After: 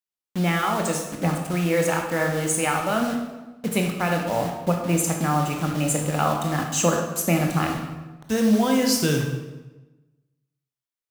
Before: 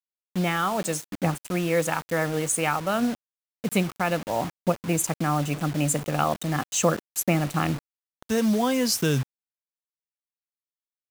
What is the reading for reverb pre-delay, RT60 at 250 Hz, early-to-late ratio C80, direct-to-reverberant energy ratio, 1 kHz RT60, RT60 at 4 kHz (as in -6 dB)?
17 ms, 1.2 s, 7.0 dB, 2.0 dB, 1.1 s, 0.90 s